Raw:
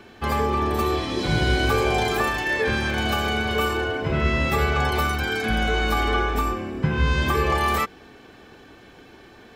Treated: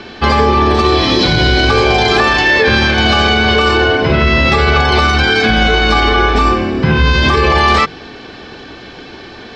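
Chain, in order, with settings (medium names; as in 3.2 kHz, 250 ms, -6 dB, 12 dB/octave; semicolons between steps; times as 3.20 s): four-pole ladder low-pass 5.6 kHz, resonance 45%; hum notches 50/100/150 Hz; loudness maximiser +24.5 dB; trim -1 dB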